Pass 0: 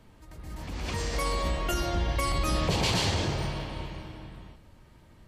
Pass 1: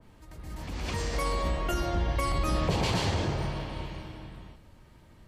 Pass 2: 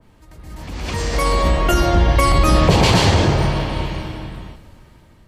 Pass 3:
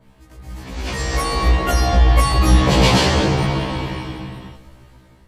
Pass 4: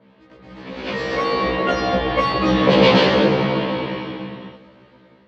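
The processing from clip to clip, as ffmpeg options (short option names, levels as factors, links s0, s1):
-af "adynamicequalizer=threshold=0.00708:dfrequency=2200:dqfactor=0.7:tfrequency=2200:tqfactor=0.7:attack=5:release=100:ratio=0.375:range=3:mode=cutabove:tftype=highshelf"
-af "dynaudnorm=f=450:g=5:m=3.35,volume=1.58"
-af "afftfilt=real='re*1.73*eq(mod(b,3),0)':imag='im*1.73*eq(mod(b,3),0)':win_size=2048:overlap=0.75,volume=1.33"
-af "highpass=210,equalizer=f=210:t=q:w=4:g=7,equalizer=f=510:t=q:w=4:g=8,equalizer=f=750:t=q:w=4:g=-4,lowpass=f=4000:w=0.5412,lowpass=f=4000:w=1.3066,volume=1.12"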